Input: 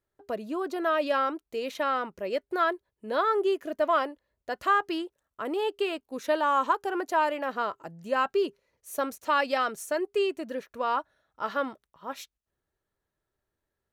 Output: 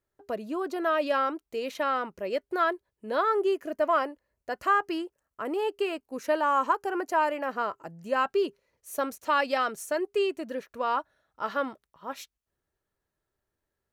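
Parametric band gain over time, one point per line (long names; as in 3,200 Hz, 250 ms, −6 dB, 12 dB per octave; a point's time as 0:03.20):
parametric band 3,600 Hz 0.26 octaves
0:03.11 −3 dB
0:03.80 −12.5 dB
0:07.66 −12.5 dB
0:08.38 −2 dB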